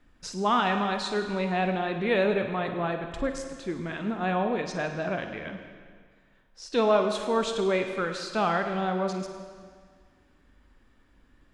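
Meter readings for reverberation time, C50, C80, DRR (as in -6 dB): 1.8 s, 6.0 dB, 7.5 dB, 5.5 dB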